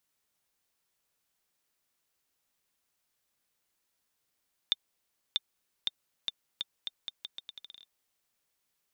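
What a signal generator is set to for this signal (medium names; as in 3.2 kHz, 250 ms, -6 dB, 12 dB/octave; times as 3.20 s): bouncing ball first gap 0.64 s, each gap 0.8, 3.59 kHz, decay 29 ms -12.5 dBFS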